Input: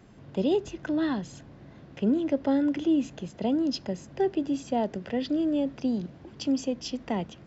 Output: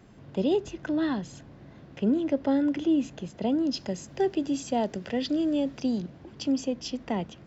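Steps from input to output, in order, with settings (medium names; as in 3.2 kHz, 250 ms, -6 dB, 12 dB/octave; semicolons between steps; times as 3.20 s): 3.77–6.01 s: treble shelf 4.1 kHz +10 dB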